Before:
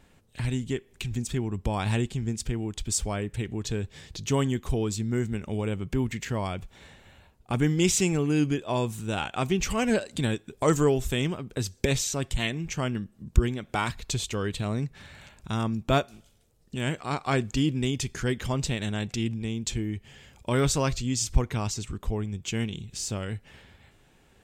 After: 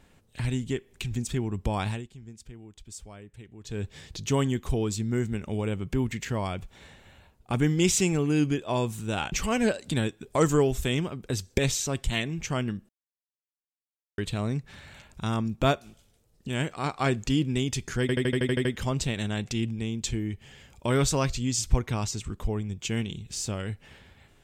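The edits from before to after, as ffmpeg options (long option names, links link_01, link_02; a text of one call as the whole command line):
ffmpeg -i in.wav -filter_complex "[0:a]asplit=14[link_01][link_02][link_03][link_04][link_05][link_06][link_07][link_08][link_09][link_10][link_11][link_12][link_13][link_14];[link_01]atrim=end=2.1,asetpts=PTS-STARTPTS,afade=type=out:start_time=1.83:duration=0.27:curve=qua:silence=0.16788[link_15];[link_02]atrim=start=2.1:end=3.55,asetpts=PTS-STARTPTS,volume=-15.5dB[link_16];[link_03]atrim=start=3.55:end=9.322,asetpts=PTS-STARTPTS,afade=type=in:duration=0.27:curve=qua:silence=0.16788[link_17];[link_04]atrim=start=9.588:end=13.16,asetpts=PTS-STARTPTS,afade=type=out:start_time=3.568:duration=0.004:curve=hsin[link_18];[link_05]atrim=start=13.16:end=14.45,asetpts=PTS-STARTPTS,volume=0[link_19];[link_06]atrim=start=14.45:end=18.362,asetpts=PTS-STARTPTS,afade=type=in:duration=0.004:curve=hsin[link_20];[link_07]atrim=start=18.278:end=18.362[link_21];[link_08]atrim=start=18.278:end=18.362[link_22];[link_09]atrim=start=18.278:end=18.362[link_23];[link_10]atrim=start=18.278:end=18.362[link_24];[link_11]atrim=start=18.278:end=18.362[link_25];[link_12]atrim=start=18.278:end=18.362[link_26];[link_13]atrim=start=18.278:end=18.362[link_27];[link_14]atrim=start=18.278[link_28];[link_15][link_16][link_17]concat=n=3:v=0:a=1[link_29];[link_18][link_19][link_20]concat=n=3:v=0:a=1[link_30];[link_29][link_30]acrossfade=duration=0.004:curve1=hsin:curve2=hsin[link_31];[link_31][link_21]acrossfade=duration=0.004:curve1=hsin:curve2=hsin[link_32];[link_32][link_22]acrossfade=duration=0.004:curve1=hsin:curve2=hsin[link_33];[link_33][link_23]acrossfade=duration=0.004:curve1=hsin:curve2=hsin[link_34];[link_34][link_24]acrossfade=duration=0.004:curve1=hsin:curve2=hsin[link_35];[link_35][link_25]acrossfade=duration=0.004:curve1=hsin:curve2=hsin[link_36];[link_36][link_26]acrossfade=duration=0.004:curve1=hsin:curve2=hsin[link_37];[link_37][link_27]acrossfade=duration=0.004:curve1=hsin:curve2=hsin[link_38];[link_38][link_28]acrossfade=duration=0.004:curve1=hsin:curve2=hsin" out.wav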